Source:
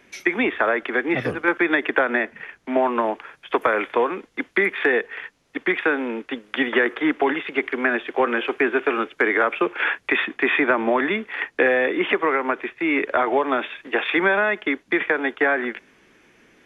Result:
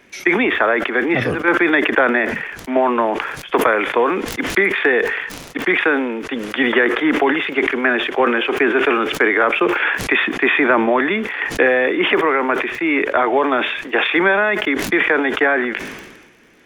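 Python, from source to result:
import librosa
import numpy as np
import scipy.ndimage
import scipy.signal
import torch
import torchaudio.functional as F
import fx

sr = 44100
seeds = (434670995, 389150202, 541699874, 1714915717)

y = fx.dmg_crackle(x, sr, seeds[0], per_s=50.0, level_db=-46.0)
y = fx.sustainer(y, sr, db_per_s=45.0)
y = y * 10.0 ** (3.5 / 20.0)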